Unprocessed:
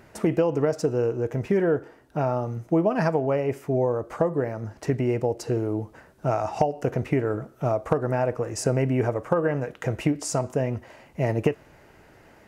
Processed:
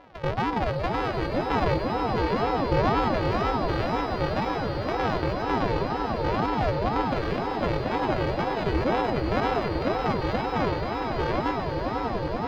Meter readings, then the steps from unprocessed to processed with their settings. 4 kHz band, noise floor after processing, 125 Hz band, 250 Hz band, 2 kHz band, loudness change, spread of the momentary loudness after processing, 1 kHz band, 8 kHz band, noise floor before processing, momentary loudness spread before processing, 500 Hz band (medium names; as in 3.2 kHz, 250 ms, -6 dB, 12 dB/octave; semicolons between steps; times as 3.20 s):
+8.5 dB, -30 dBFS, -2.0 dB, -1.0 dB, +5.0 dB, -0.5 dB, 3 LU, +6.5 dB, under -10 dB, -54 dBFS, 7 LU, -2.5 dB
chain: sorted samples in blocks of 128 samples; peak limiter -19 dBFS, peak gain reduction 11 dB; distance through air 280 m; on a send: echo with a slow build-up 96 ms, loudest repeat 8, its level -8 dB; on the sum: ring modulator with a swept carrier 420 Hz, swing 55%, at 2 Hz; trim +4 dB